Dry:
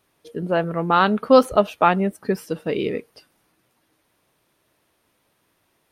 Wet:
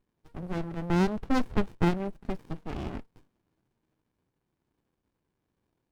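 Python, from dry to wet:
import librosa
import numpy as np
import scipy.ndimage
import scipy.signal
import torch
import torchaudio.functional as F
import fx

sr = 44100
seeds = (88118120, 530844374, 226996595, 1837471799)

y = fx.running_max(x, sr, window=65)
y = F.gain(torch.from_numpy(y), -7.5).numpy()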